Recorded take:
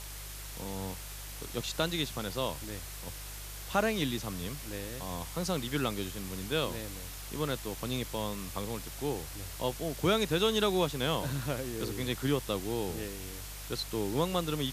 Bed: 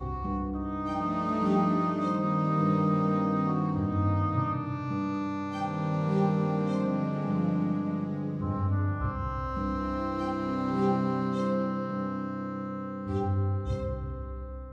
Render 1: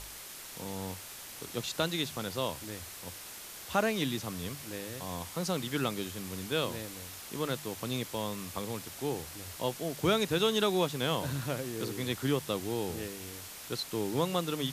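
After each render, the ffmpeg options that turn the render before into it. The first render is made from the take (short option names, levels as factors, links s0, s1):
-af "bandreject=f=50:t=h:w=4,bandreject=f=100:t=h:w=4,bandreject=f=150:t=h:w=4"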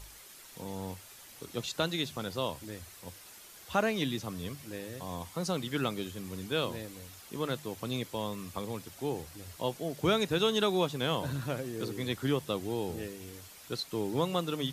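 -af "afftdn=nr=8:nf=-46"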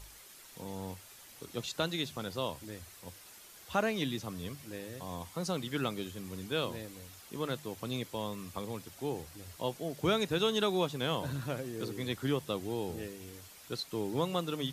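-af "volume=0.794"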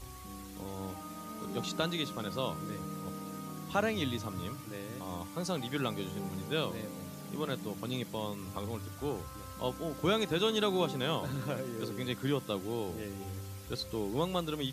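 -filter_complex "[1:a]volume=0.168[s0];[0:a][s0]amix=inputs=2:normalize=0"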